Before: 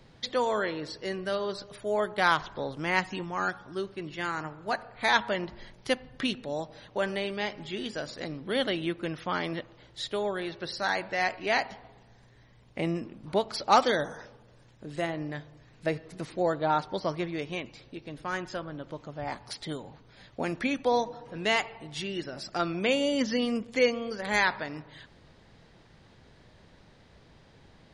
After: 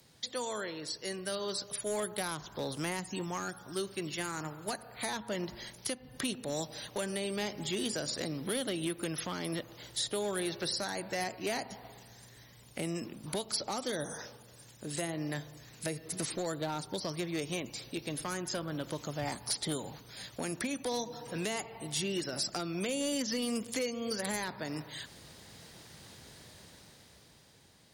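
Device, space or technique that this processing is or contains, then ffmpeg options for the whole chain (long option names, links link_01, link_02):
FM broadcast chain: -filter_complex "[0:a]highpass=64,dynaudnorm=framelen=280:gausssize=11:maxgain=12.5dB,acrossover=split=430|1300|6800[link_01][link_02][link_03][link_04];[link_01]acompressor=threshold=-25dB:ratio=4[link_05];[link_02]acompressor=threshold=-32dB:ratio=4[link_06];[link_03]acompressor=threshold=-37dB:ratio=4[link_07];[link_04]acompressor=threshold=-52dB:ratio=4[link_08];[link_05][link_06][link_07][link_08]amix=inputs=4:normalize=0,aemphasis=mode=production:type=50fm,alimiter=limit=-17dB:level=0:latency=1:release=263,asoftclip=type=hard:threshold=-20.5dB,lowpass=frequency=15000:width=0.5412,lowpass=frequency=15000:width=1.3066,aemphasis=mode=production:type=50fm,volume=-7.5dB"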